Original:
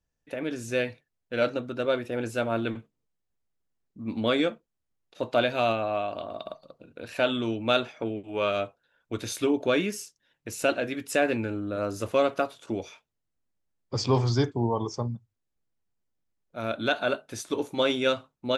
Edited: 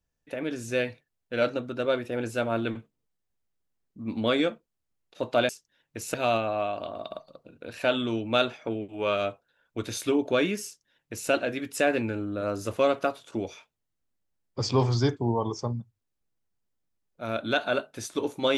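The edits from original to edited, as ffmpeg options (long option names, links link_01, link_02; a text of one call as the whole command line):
ffmpeg -i in.wav -filter_complex "[0:a]asplit=3[link_01][link_02][link_03];[link_01]atrim=end=5.492[link_04];[link_02]atrim=start=9.998:end=10.652[link_05];[link_03]atrim=start=5.488[link_06];[link_04][link_05]acrossfade=duration=0.004:curve1=hsin:curve2=hsin[link_07];[link_07][link_06]acrossfade=duration=0.004:curve1=hsin:curve2=hsin" out.wav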